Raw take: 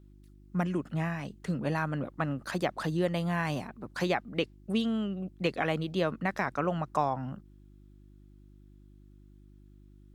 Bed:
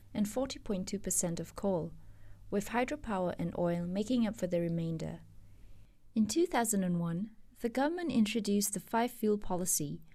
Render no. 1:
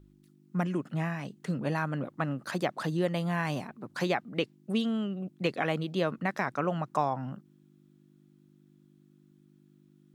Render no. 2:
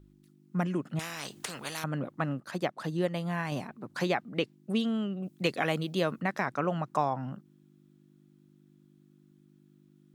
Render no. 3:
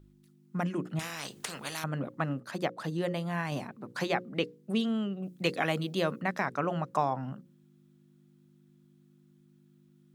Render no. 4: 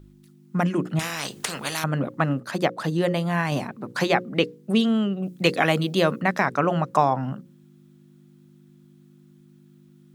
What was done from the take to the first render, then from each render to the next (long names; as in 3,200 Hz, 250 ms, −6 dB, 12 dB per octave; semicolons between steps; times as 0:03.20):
hum removal 50 Hz, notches 2
0:00.99–0:01.84: every bin compressed towards the loudest bin 4 to 1; 0:02.40–0:03.52: expander for the loud parts, over −41 dBFS; 0:05.22–0:06.20: high-shelf EQ 3,800 Hz → 6,300 Hz +10 dB
mains-hum notches 60/120/180/240/300/360/420/480/540 Hz
level +9 dB